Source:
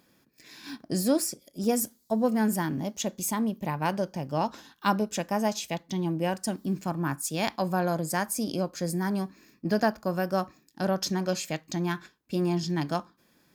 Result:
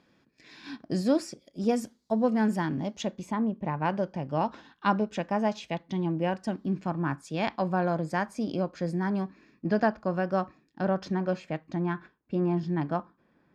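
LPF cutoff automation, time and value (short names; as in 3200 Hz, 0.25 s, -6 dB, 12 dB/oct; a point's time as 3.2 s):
3 s 4000 Hz
3.48 s 1500 Hz
4.02 s 2900 Hz
10.37 s 2900 Hz
11.55 s 1700 Hz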